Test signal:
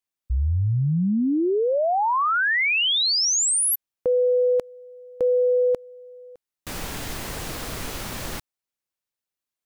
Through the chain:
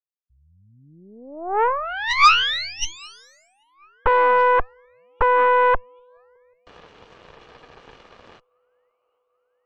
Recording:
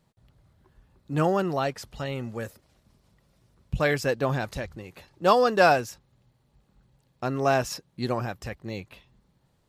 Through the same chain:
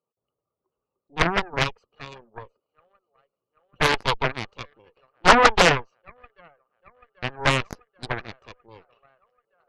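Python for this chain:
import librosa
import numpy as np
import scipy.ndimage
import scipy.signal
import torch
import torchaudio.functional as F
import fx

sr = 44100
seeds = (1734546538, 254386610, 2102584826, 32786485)

p1 = fx.wiener(x, sr, points=25)
p2 = fx.weighting(p1, sr, curve='ITU-R 468')
p3 = fx.env_lowpass_down(p2, sr, base_hz=1400.0, full_db=-15.0)
p4 = fx.spec_gate(p3, sr, threshold_db=-20, keep='strong')
p5 = fx.small_body(p4, sr, hz=(450.0, 1200.0, 2900.0), ring_ms=20, db=13)
p6 = p5 + fx.echo_wet_bandpass(p5, sr, ms=786, feedback_pct=65, hz=1100.0, wet_db=-23.0, dry=0)
p7 = fx.cheby_harmonics(p6, sr, harmonics=(5, 7, 8), levels_db=(-35, -18, -11), full_scale_db=-1.0)
p8 = fx.air_absorb(p7, sr, metres=100.0)
y = fx.doppler_dist(p8, sr, depth_ms=0.82)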